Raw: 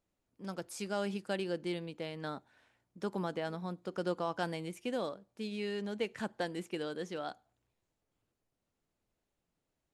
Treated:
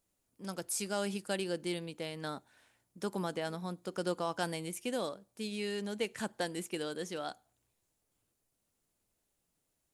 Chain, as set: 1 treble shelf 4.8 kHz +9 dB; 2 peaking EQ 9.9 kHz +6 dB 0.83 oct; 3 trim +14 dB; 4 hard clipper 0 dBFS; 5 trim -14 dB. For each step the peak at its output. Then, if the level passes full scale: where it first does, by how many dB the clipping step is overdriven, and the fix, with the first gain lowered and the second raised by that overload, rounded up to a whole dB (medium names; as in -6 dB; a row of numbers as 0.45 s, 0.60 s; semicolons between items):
-19.0 dBFS, -18.5 dBFS, -4.5 dBFS, -4.5 dBFS, -18.5 dBFS; nothing clips